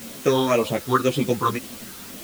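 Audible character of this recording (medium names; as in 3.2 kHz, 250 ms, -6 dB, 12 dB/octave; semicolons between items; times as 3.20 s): phasing stages 6, 1.9 Hz, lowest notch 620–1700 Hz; a quantiser's noise floor 8-bit, dither triangular; a shimmering, thickened sound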